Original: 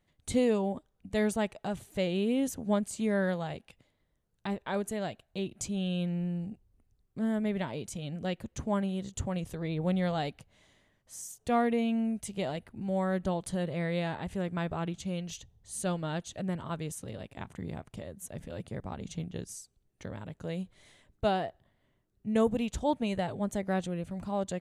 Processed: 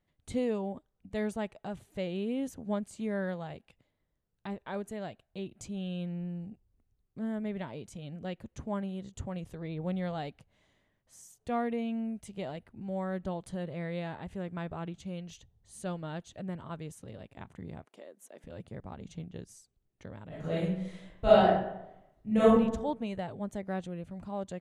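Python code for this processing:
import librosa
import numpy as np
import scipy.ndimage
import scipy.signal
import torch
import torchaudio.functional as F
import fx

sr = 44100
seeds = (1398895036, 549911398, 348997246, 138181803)

y = fx.highpass(x, sr, hz=300.0, slope=24, at=(17.85, 18.44))
y = fx.reverb_throw(y, sr, start_s=20.28, length_s=2.25, rt60_s=0.84, drr_db=-11.5)
y = fx.high_shelf(y, sr, hz=4300.0, db=-8.0)
y = y * 10.0 ** (-4.5 / 20.0)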